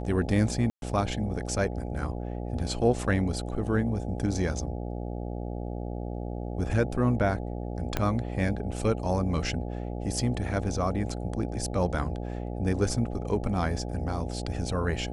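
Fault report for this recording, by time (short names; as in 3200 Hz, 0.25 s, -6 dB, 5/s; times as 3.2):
buzz 60 Hz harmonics 14 -34 dBFS
0.7–0.82 gap 0.121 s
7.97 pop -12 dBFS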